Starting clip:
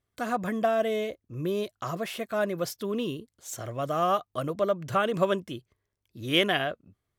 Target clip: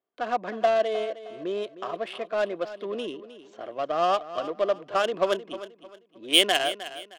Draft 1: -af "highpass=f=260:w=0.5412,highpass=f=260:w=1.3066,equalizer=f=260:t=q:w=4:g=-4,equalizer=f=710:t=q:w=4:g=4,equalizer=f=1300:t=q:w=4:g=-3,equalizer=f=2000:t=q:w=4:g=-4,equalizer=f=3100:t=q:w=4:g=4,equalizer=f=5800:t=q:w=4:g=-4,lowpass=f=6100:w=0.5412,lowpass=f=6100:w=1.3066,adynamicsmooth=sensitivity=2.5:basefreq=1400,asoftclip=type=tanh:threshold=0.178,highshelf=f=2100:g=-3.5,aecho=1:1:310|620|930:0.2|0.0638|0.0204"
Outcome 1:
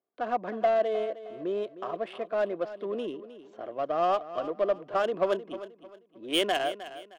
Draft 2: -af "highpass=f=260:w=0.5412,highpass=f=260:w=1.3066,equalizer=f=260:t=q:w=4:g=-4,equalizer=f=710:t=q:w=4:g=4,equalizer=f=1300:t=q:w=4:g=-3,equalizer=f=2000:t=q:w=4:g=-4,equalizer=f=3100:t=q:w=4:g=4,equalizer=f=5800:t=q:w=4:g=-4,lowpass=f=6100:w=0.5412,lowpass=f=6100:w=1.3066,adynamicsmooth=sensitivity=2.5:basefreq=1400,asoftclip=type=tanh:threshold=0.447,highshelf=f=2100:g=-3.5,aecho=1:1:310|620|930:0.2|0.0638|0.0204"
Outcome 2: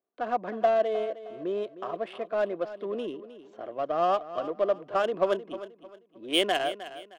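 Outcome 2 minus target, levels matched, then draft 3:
4 kHz band -5.5 dB
-af "highpass=f=260:w=0.5412,highpass=f=260:w=1.3066,equalizer=f=260:t=q:w=4:g=-4,equalizer=f=710:t=q:w=4:g=4,equalizer=f=1300:t=q:w=4:g=-3,equalizer=f=2000:t=q:w=4:g=-4,equalizer=f=3100:t=q:w=4:g=4,equalizer=f=5800:t=q:w=4:g=-4,lowpass=f=6100:w=0.5412,lowpass=f=6100:w=1.3066,adynamicsmooth=sensitivity=2.5:basefreq=1400,asoftclip=type=tanh:threshold=0.447,highshelf=f=2100:g=8,aecho=1:1:310|620|930:0.2|0.0638|0.0204"

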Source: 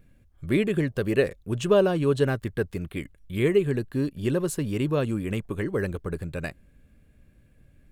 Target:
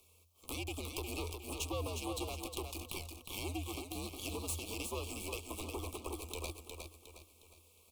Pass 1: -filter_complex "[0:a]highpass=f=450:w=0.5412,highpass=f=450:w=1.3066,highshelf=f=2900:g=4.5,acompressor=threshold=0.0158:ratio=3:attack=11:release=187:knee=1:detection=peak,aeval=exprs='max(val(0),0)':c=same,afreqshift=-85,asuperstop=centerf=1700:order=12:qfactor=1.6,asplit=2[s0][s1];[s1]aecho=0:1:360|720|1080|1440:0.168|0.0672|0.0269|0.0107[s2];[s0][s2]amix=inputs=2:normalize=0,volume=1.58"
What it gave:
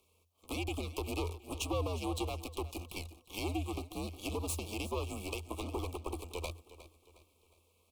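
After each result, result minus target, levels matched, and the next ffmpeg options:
echo-to-direct -10 dB; compression: peak gain reduction -5 dB; 8 kHz band -4.5 dB
-filter_complex "[0:a]highpass=f=450:w=0.5412,highpass=f=450:w=1.3066,highshelf=f=2900:g=4.5,acompressor=threshold=0.0158:ratio=3:attack=11:release=187:knee=1:detection=peak,aeval=exprs='max(val(0),0)':c=same,afreqshift=-85,asuperstop=centerf=1700:order=12:qfactor=1.6,asplit=2[s0][s1];[s1]aecho=0:1:360|720|1080|1440|1800:0.531|0.212|0.0849|0.034|0.0136[s2];[s0][s2]amix=inputs=2:normalize=0,volume=1.58"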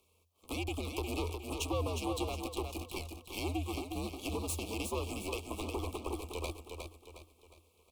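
compression: peak gain reduction -5 dB; 8 kHz band -4.0 dB
-filter_complex "[0:a]highpass=f=450:w=0.5412,highpass=f=450:w=1.3066,highshelf=f=2900:g=4.5,acompressor=threshold=0.00708:ratio=3:attack=11:release=187:knee=1:detection=peak,aeval=exprs='max(val(0),0)':c=same,afreqshift=-85,asuperstop=centerf=1700:order=12:qfactor=1.6,asplit=2[s0][s1];[s1]aecho=0:1:360|720|1080|1440|1800:0.531|0.212|0.0849|0.034|0.0136[s2];[s0][s2]amix=inputs=2:normalize=0,volume=1.58"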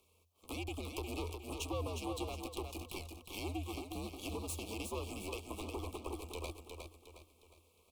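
8 kHz band -4.0 dB
-filter_complex "[0:a]highpass=f=450:w=0.5412,highpass=f=450:w=1.3066,highshelf=f=2900:g=14.5,acompressor=threshold=0.00708:ratio=3:attack=11:release=187:knee=1:detection=peak,aeval=exprs='max(val(0),0)':c=same,afreqshift=-85,asuperstop=centerf=1700:order=12:qfactor=1.6,asplit=2[s0][s1];[s1]aecho=0:1:360|720|1080|1440|1800:0.531|0.212|0.0849|0.034|0.0136[s2];[s0][s2]amix=inputs=2:normalize=0,volume=1.58"

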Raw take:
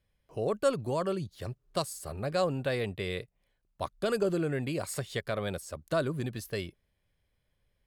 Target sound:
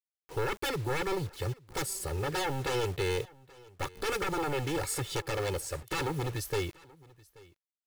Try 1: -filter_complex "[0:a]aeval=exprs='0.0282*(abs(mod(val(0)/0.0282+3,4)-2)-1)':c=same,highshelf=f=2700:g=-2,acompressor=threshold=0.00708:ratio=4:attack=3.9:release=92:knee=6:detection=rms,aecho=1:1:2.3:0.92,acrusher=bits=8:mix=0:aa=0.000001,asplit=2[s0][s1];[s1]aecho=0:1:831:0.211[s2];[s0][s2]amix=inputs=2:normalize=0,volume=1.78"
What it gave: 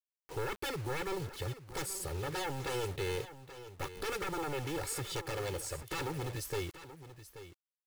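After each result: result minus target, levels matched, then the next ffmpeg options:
echo-to-direct +10 dB; compression: peak gain reduction +5.5 dB
-filter_complex "[0:a]aeval=exprs='0.0282*(abs(mod(val(0)/0.0282+3,4)-2)-1)':c=same,highshelf=f=2700:g=-2,acompressor=threshold=0.00708:ratio=4:attack=3.9:release=92:knee=6:detection=rms,aecho=1:1:2.3:0.92,acrusher=bits=8:mix=0:aa=0.000001,asplit=2[s0][s1];[s1]aecho=0:1:831:0.0668[s2];[s0][s2]amix=inputs=2:normalize=0,volume=1.78"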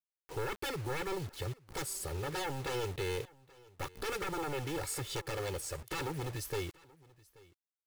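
compression: peak gain reduction +5.5 dB
-filter_complex "[0:a]aeval=exprs='0.0282*(abs(mod(val(0)/0.0282+3,4)-2)-1)':c=same,highshelf=f=2700:g=-2,acompressor=threshold=0.0178:ratio=4:attack=3.9:release=92:knee=6:detection=rms,aecho=1:1:2.3:0.92,acrusher=bits=8:mix=0:aa=0.000001,asplit=2[s0][s1];[s1]aecho=0:1:831:0.0668[s2];[s0][s2]amix=inputs=2:normalize=0,volume=1.78"

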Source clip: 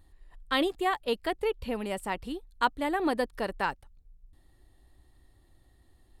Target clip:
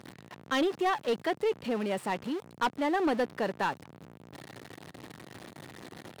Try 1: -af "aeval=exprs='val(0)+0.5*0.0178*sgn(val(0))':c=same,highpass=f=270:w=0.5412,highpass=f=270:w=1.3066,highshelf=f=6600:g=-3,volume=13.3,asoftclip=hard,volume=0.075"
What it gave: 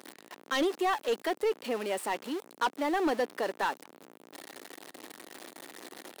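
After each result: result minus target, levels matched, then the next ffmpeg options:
125 Hz band -12.0 dB; 8 kHz band +5.5 dB
-af "aeval=exprs='val(0)+0.5*0.0178*sgn(val(0))':c=same,highpass=f=130:w=0.5412,highpass=f=130:w=1.3066,highshelf=f=6600:g=-3,volume=13.3,asoftclip=hard,volume=0.075"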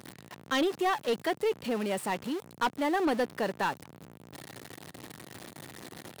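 8 kHz band +5.0 dB
-af "aeval=exprs='val(0)+0.5*0.0178*sgn(val(0))':c=same,highpass=f=130:w=0.5412,highpass=f=130:w=1.3066,highshelf=f=6600:g=-14,volume=13.3,asoftclip=hard,volume=0.075"

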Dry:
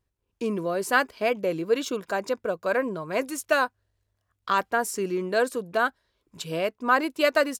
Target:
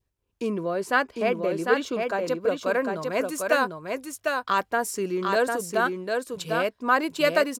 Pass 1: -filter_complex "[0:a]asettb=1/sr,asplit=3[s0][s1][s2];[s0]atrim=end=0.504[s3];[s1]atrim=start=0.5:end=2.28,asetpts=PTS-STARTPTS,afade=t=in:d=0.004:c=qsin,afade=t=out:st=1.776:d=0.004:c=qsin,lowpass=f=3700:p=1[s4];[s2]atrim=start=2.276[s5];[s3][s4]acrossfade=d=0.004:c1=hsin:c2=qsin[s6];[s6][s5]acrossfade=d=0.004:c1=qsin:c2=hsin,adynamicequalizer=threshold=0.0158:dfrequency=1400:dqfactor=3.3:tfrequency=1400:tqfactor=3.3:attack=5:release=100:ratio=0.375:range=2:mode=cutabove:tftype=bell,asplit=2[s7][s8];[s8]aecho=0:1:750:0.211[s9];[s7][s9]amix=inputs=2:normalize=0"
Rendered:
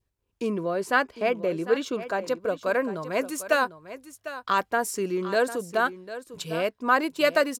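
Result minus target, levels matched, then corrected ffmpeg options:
echo-to-direct -9.5 dB
-filter_complex "[0:a]asettb=1/sr,asplit=3[s0][s1][s2];[s0]atrim=end=0.504[s3];[s1]atrim=start=0.5:end=2.28,asetpts=PTS-STARTPTS,afade=t=in:d=0.004:c=qsin,afade=t=out:st=1.776:d=0.004:c=qsin,lowpass=f=3700:p=1[s4];[s2]atrim=start=2.276[s5];[s3][s4]acrossfade=d=0.004:c1=hsin:c2=qsin[s6];[s6][s5]acrossfade=d=0.004:c1=qsin:c2=hsin,adynamicequalizer=threshold=0.0158:dfrequency=1400:dqfactor=3.3:tfrequency=1400:tqfactor=3.3:attack=5:release=100:ratio=0.375:range=2:mode=cutabove:tftype=bell,asplit=2[s7][s8];[s8]aecho=0:1:750:0.631[s9];[s7][s9]amix=inputs=2:normalize=0"

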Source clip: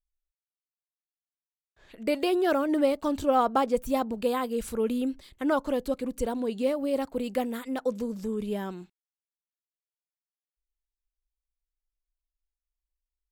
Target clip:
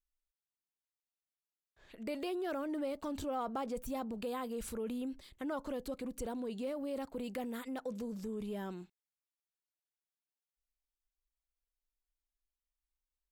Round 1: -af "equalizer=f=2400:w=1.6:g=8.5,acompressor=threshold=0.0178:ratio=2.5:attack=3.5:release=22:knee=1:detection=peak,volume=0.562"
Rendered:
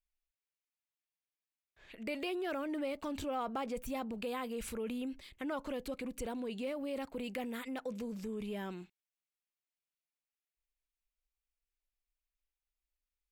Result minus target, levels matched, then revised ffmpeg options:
2 kHz band +4.5 dB
-af "acompressor=threshold=0.0178:ratio=2.5:attack=3.5:release=22:knee=1:detection=peak,volume=0.562"

